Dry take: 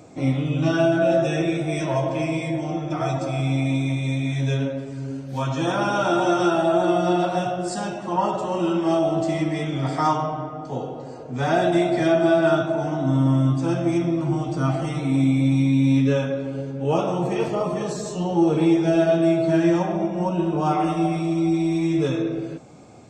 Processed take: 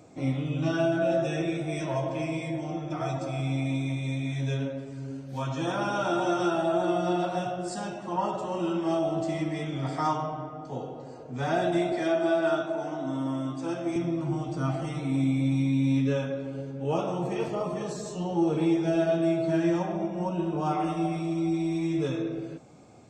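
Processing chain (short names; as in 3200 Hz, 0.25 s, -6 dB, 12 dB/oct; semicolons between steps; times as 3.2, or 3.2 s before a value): 11.92–13.96 HPF 260 Hz 12 dB/oct; gain -6.5 dB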